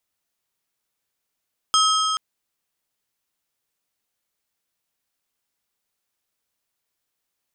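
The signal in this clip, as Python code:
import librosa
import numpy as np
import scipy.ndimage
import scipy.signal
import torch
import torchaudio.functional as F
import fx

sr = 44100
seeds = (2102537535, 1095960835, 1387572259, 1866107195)

y = fx.strike_metal(sr, length_s=0.43, level_db=-16.5, body='plate', hz=1280.0, decay_s=3.95, tilt_db=2.5, modes=5)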